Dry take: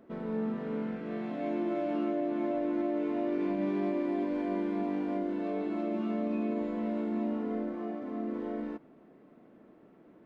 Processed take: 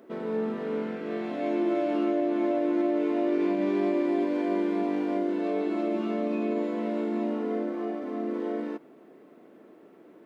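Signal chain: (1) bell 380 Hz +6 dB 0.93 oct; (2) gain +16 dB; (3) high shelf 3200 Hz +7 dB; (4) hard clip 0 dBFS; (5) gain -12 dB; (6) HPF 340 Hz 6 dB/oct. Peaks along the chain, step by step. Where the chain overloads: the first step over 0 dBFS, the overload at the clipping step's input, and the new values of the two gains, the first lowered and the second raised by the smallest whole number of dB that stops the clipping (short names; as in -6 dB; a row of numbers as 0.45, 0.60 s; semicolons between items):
-17.5, -1.5, -1.5, -1.5, -13.5, -16.5 dBFS; no overload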